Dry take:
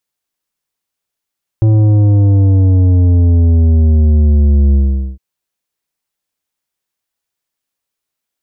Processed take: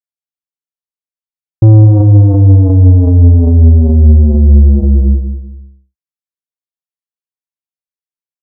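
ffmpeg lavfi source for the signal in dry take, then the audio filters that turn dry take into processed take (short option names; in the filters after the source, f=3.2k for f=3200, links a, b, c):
-f lavfi -i "aevalsrc='0.447*clip((3.56-t)/0.44,0,1)*tanh(2.99*sin(2*PI*110*3.56/log(65/110)*(exp(log(65/110)*t/3.56)-1)))/tanh(2.99)':d=3.56:s=44100"
-filter_complex "[0:a]agate=range=-33dB:threshold=-10dB:ratio=3:detection=peak,asplit=2[a][b];[b]adelay=194,lowpass=f=860:p=1,volume=-5dB,asplit=2[c][d];[d]adelay=194,lowpass=f=860:p=1,volume=0.35,asplit=2[e][f];[f]adelay=194,lowpass=f=860:p=1,volume=0.35,asplit=2[g][h];[h]adelay=194,lowpass=f=860:p=1,volume=0.35[i];[c][e][g][i]amix=inputs=4:normalize=0[j];[a][j]amix=inputs=2:normalize=0,alimiter=level_in=11.5dB:limit=-1dB:release=50:level=0:latency=1"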